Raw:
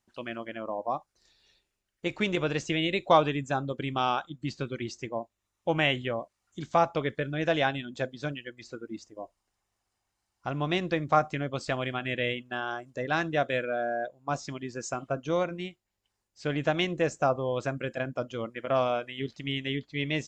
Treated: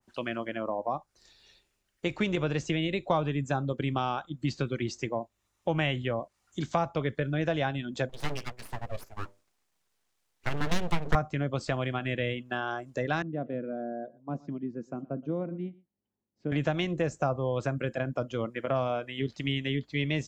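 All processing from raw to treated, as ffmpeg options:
-filter_complex "[0:a]asettb=1/sr,asplit=3[s0][s1][s2];[s0]atrim=end=8.094[s3];[s1]atrim=start=8.09:end=11.15,asetpts=PTS-STARTPTS,afade=t=in:d=0.004:c=qsin,afade=t=out:st=3.056:d=0.004:c=qsin,bandreject=f=50:t=h:w=6,bandreject=f=100:t=h:w=6,bandreject=f=150:t=h:w=6,bandreject=f=200:t=h:w=6,bandreject=f=250:t=h:w=6,bandreject=f=300:t=h:w=6,aeval=exprs='abs(val(0))':c=same[s4];[s2]atrim=start=11.146[s5];[s3][s4]acrossfade=d=0.004:c1=hsin:c2=qsin[s6];[s6][s5]acrossfade=d=0.004:c1=qsin:c2=hsin,asettb=1/sr,asplit=3[s7][s8][s9];[s7]atrim=end=13.224[s10];[s8]atrim=start=13.22:end=16.52,asetpts=PTS-STARTPTS,afade=t=in:d=0.004:c=qsin,afade=t=out:st=3.296:d=0.004:c=qsin,bandpass=f=230:t=q:w=1.7,aecho=1:1:120:0.0708,atrim=end_sample=145530[s11];[s9]atrim=start=16.516[s12];[s10][s11]acrossfade=d=0.004:c1=hsin:c2=qsin[s13];[s13][s12]acrossfade=d=0.004:c1=qsin:c2=hsin,acrossover=split=160[s14][s15];[s15]acompressor=threshold=0.0178:ratio=2.5[s16];[s14][s16]amix=inputs=2:normalize=0,adynamicequalizer=threshold=0.00355:dfrequency=1600:dqfactor=0.7:tfrequency=1600:tqfactor=0.7:attack=5:release=100:ratio=0.375:range=2:mode=cutabove:tftype=highshelf,volume=1.88"

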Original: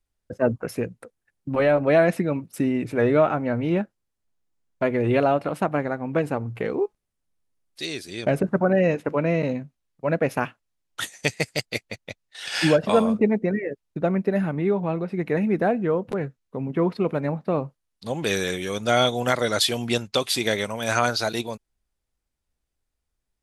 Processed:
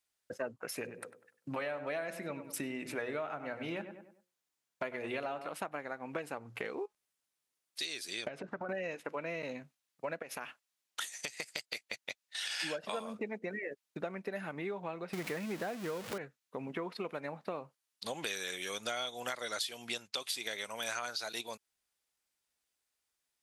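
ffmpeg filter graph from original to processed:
-filter_complex "[0:a]asettb=1/sr,asplit=3[s0][s1][s2];[s0]atrim=end=0.754[s3];[s1]atrim=start=0.75:end=5.48,asetpts=PTS-STARTPTS,afade=t=in:d=0.004:c=qsin,afade=t=out:st=4.726:d=0.004:c=qsin,equalizer=f=130:w=2.2:g=4,bandreject=f=60:t=h:w=6,bandreject=f=120:t=h:w=6,bandreject=f=180:t=h:w=6,bandreject=f=240:t=h:w=6,bandreject=f=300:t=h:w=6,bandreject=f=360:t=h:w=6,bandreject=f=420:t=h:w=6,bandreject=f=480:t=h:w=6,bandreject=f=540:t=h:w=6,asplit=2[s4][s5];[s5]adelay=98,lowpass=f=2100:p=1,volume=0.251,asplit=2[s6][s7];[s7]adelay=98,lowpass=f=2100:p=1,volume=0.37,asplit=2[s8][s9];[s9]adelay=98,lowpass=f=2100:p=1,volume=0.37,asplit=2[s10][s11];[s11]adelay=98,lowpass=f=2100:p=1,volume=0.37[s12];[s4][s6][s8][s10][s12]amix=inputs=5:normalize=0,atrim=end_sample=208593[s13];[s2]atrim=start=5.476[s14];[s3][s13]acrossfade=d=0.004:c1=hsin:c2=qsin[s15];[s15][s14]acrossfade=d=0.004:c1=qsin:c2=hsin,asettb=1/sr,asplit=3[s16][s17][s18];[s16]atrim=end=8.284[s19];[s17]atrim=start=8.28:end=8.69,asetpts=PTS-STARTPTS,afade=t=in:d=0.004:c=qsin,afade=t=out:st=0.406:d=0.004:c=qsin,lowpass=4700,acompressor=threshold=0.0501:ratio=6:attack=3.2:release=140:knee=1:detection=peak[s20];[s18]atrim=start=8.686[s21];[s19][s20]acrossfade=d=0.004:c1=hsin:c2=qsin[s22];[s22][s21]acrossfade=d=0.004:c1=qsin:c2=hsin,asettb=1/sr,asplit=3[s23][s24][s25];[s23]atrim=end=10.224[s26];[s24]atrim=start=10.22:end=12.6,asetpts=PTS-STARTPTS,afade=t=in:d=0.004:c=qsin,afade=t=out:st=2.376:d=0.004:c=qsin,equalizer=f=93:w=1.3:g=-4.5,acompressor=threshold=0.0398:ratio=12:attack=3.2:release=140:knee=1:detection=peak[s27];[s25]atrim=start=12.596[s28];[s26][s27]acrossfade=d=0.004:c1=hsin:c2=qsin[s29];[s29][s28]acrossfade=d=0.004:c1=qsin:c2=hsin,asettb=1/sr,asplit=3[s30][s31][s32];[s30]atrim=end=15.134[s33];[s31]atrim=start=15.13:end=16.18,asetpts=PTS-STARTPTS,afade=t=in:d=0.004:c=qsin,afade=t=out:st=1.046:d=0.004:c=qsin,aeval=exprs='val(0)+0.5*0.0376*sgn(val(0))':c=same,lowshelf=f=170:g=11.5[s34];[s32]atrim=start=16.176[s35];[s33][s34]acrossfade=d=0.004:c1=hsin:c2=qsin[s36];[s36][s35]acrossfade=d=0.004:c1=qsin:c2=hsin,highpass=f=690:p=1,tiltshelf=f=1400:g=-3,acompressor=threshold=0.0141:ratio=6,volume=1.12"

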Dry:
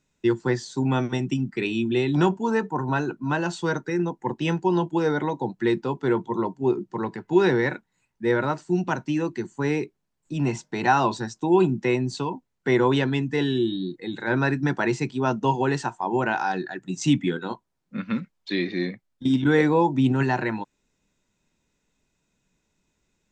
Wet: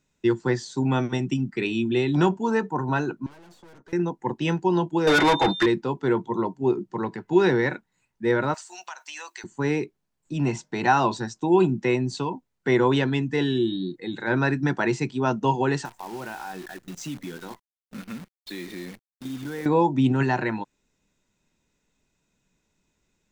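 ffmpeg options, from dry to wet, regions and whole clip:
-filter_complex "[0:a]asettb=1/sr,asplit=3[s0][s1][s2];[s0]atrim=end=3.264[s3];[s1]atrim=start=3.26:end=3.93,asetpts=PTS-STARTPTS,afade=t=in:d=0.004:c=qsin,afade=t=out:st=0.666:d=0.004:c=qsin,aeval=exprs='(tanh(100*val(0)+0.65)-tanh(0.65))/100':c=same,acrossover=split=270|1400[s4][s5][s6];[s4]acompressor=threshold=0.002:ratio=4[s7];[s5]acompressor=threshold=0.00282:ratio=4[s8];[s6]acompressor=threshold=0.001:ratio=4[s9];[s7][s8][s9]amix=inputs=3:normalize=0[s10];[s2]atrim=start=3.926[s11];[s3][s10]acrossfade=d=0.004:c1=hsin:c2=qsin[s12];[s12][s11]acrossfade=d=0.004:c1=qsin:c2=hsin,asettb=1/sr,asplit=3[s13][s14][s15];[s13]atrim=end=5.074[s16];[s14]atrim=start=5.07:end=5.66,asetpts=PTS-STARTPTS,afade=t=in:d=0.004:c=qsin,afade=t=out:st=0.586:d=0.004:c=qsin,aecho=1:1:6.2:0.55,atrim=end_sample=26019,asplit=2[s17][s18];[s18]highpass=f=720:p=1,volume=20,asoftclip=type=tanh:threshold=0.251[s19];[s17][s19]amix=inputs=2:normalize=0,lowpass=f=7100:p=1,volume=0.501,aeval=exprs='val(0)+0.0282*sin(2*PI*3600*n/s)':c=same[s20];[s15]atrim=start=5.656[s21];[s16][s20]acrossfade=d=0.004:c1=hsin:c2=qsin[s22];[s22][s21]acrossfade=d=0.004:c1=qsin:c2=hsin,asettb=1/sr,asplit=3[s23][s24][s25];[s23]atrim=end=8.544[s26];[s24]atrim=start=8.54:end=9.44,asetpts=PTS-STARTPTS,afade=t=in:d=0.004:c=qsin,afade=t=out:st=0.896:d=0.004:c=qsin,highpass=f=780:w=0.5412,highpass=f=780:w=1.3066,aemphasis=mode=production:type=75kf,acompressor=threshold=0.0224:ratio=8:attack=3.2:release=140:knee=1:detection=peak[s27];[s25]atrim=start=9.436[s28];[s26][s27]acrossfade=d=0.004:c1=hsin:c2=qsin[s29];[s29][s28]acrossfade=d=0.004:c1=qsin:c2=hsin,asettb=1/sr,asplit=3[s30][s31][s32];[s30]atrim=end=15.854[s33];[s31]atrim=start=15.85:end=19.66,asetpts=PTS-STARTPTS,afade=t=in:d=0.004:c=qsin,afade=t=out:st=3.806:d=0.004:c=qsin,acompressor=threshold=0.0141:ratio=2.5:attack=3.2:release=140:knee=1:detection=peak,acrusher=bits=8:dc=4:mix=0:aa=0.000001[s34];[s32]atrim=start=19.656[s35];[s33][s34]acrossfade=d=0.004:c1=hsin:c2=qsin[s36];[s36][s35]acrossfade=d=0.004:c1=qsin:c2=hsin"

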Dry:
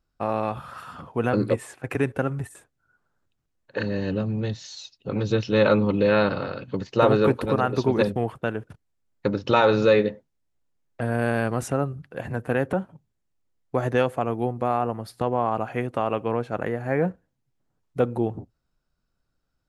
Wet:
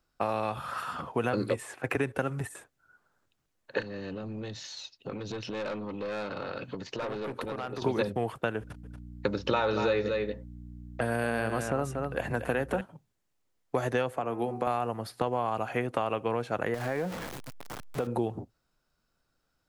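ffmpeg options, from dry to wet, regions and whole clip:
-filter_complex "[0:a]asettb=1/sr,asplit=3[s0][s1][s2];[s0]atrim=end=3.804[s3];[s1]atrim=start=3.8:end=7.82,asetpts=PTS-STARTPTS,afade=t=in:d=0.004:c=qsin,afade=t=out:st=4.016:d=0.004:c=qsin,aeval=exprs='(tanh(7.94*val(0)+0.35)-tanh(0.35))/7.94':c=same,acompressor=threshold=0.02:ratio=8:attack=3.2:release=140:knee=1:detection=peak[s4];[s2]atrim=start=7.816[s5];[s3][s4]acrossfade=d=0.004:c1=hsin:c2=qsin[s6];[s6][s5]acrossfade=d=0.004:c1=qsin:c2=hsin,asettb=1/sr,asplit=3[s7][s8][s9];[s7]atrim=end=8.604[s10];[s8]atrim=start=8.6:end=12.81,asetpts=PTS-STARTPTS,afade=t=in:d=0.004:c=qsin,afade=t=out:st=4.206:d=0.004:c=qsin,aeval=exprs='val(0)+0.00708*(sin(2*PI*60*n/s)+sin(2*PI*2*60*n/s)/2+sin(2*PI*3*60*n/s)/3+sin(2*PI*4*60*n/s)/4+sin(2*PI*5*60*n/s)/5)':c=same,aecho=1:1:234:0.355,atrim=end_sample=185661[s11];[s9]atrim=start=12.806[s12];[s10][s11]acrossfade=d=0.004:c1=hsin:c2=qsin[s13];[s13][s12]acrossfade=d=0.004:c1=qsin:c2=hsin,asettb=1/sr,asplit=3[s14][s15][s16];[s14]atrim=end=14.134[s17];[s15]atrim=start=14.13:end=14.67,asetpts=PTS-STARTPTS,afade=t=in:d=0.004:c=qsin,afade=t=out:st=0.536:d=0.004:c=qsin,acrossover=split=140|2200[s18][s19][s20];[s18]acompressor=threshold=0.00447:ratio=4[s21];[s19]acompressor=threshold=0.0562:ratio=4[s22];[s20]acompressor=threshold=0.00178:ratio=4[s23];[s21][s22][s23]amix=inputs=3:normalize=0,bandreject=f=74.69:t=h:w=4,bandreject=f=149.38:t=h:w=4,bandreject=f=224.07:t=h:w=4,bandreject=f=298.76:t=h:w=4,bandreject=f=373.45:t=h:w=4,bandreject=f=448.14:t=h:w=4,bandreject=f=522.83:t=h:w=4,bandreject=f=597.52:t=h:w=4,bandreject=f=672.21:t=h:w=4,bandreject=f=746.9:t=h:w=4,bandreject=f=821.59:t=h:w=4,bandreject=f=896.28:t=h:w=4,bandreject=f=970.97:t=h:w=4,bandreject=f=1045.66:t=h:w=4,bandreject=f=1120.35:t=h:w=4,bandreject=f=1195.04:t=h:w=4,bandreject=f=1269.73:t=h:w=4,bandreject=f=1344.42:t=h:w=4,bandreject=f=1419.11:t=h:w=4,bandreject=f=1493.8:t=h:w=4,bandreject=f=1568.49:t=h:w=4,bandreject=f=1643.18:t=h:w=4,bandreject=f=1717.87:t=h:w=4,bandreject=f=1792.56:t=h:w=4,bandreject=f=1867.25:t=h:w=4,bandreject=f=1941.94:t=h:w=4,bandreject=f=2016.63:t=h:w=4,bandreject=f=2091.32:t=h:w=4,bandreject=f=2166.01:t=h:w=4,bandreject=f=2240.7:t=h:w=4,bandreject=f=2315.39:t=h:w=4,bandreject=f=2390.08:t=h:w=4,bandreject=f=2464.77:t=h:w=4,bandreject=f=2539.46:t=h:w=4,bandreject=f=2614.15:t=h:w=4,bandreject=f=2688.84:t=h:w=4,bandreject=f=2763.53:t=h:w=4[s24];[s16]atrim=start=14.666[s25];[s17][s24]acrossfade=d=0.004:c1=hsin:c2=qsin[s26];[s26][s25]acrossfade=d=0.004:c1=qsin:c2=hsin,asettb=1/sr,asplit=3[s27][s28][s29];[s27]atrim=end=16.744[s30];[s28]atrim=start=16.74:end=18.07,asetpts=PTS-STARTPTS,afade=t=in:d=0.004:c=qsin,afade=t=out:st=1.326:d=0.004:c=qsin,aeval=exprs='val(0)+0.5*0.0211*sgn(val(0))':c=same,acompressor=threshold=0.0398:ratio=4:attack=3.2:release=140:knee=1:detection=peak[s31];[s29]atrim=start=18.066[s32];[s30][s31]acrossfade=d=0.004:c1=hsin:c2=qsin[s33];[s33][s32]acrossfade=d=0.004:c1=qsin:c2=hsin,lowshelf=f=240:g=-9,acrossover=split=110|2900[s34][s35][s36];[s34]acompressor=threshold=0.00501:ratio=4[s37];[s35]acompressor=threshold=0.0251:ratio=4[s38];[s36]acompressor=threshold=0.00316:ratio=4[s39];[s37][s38][s39]amix=inputs=3:normalize=0,volume=1.78"

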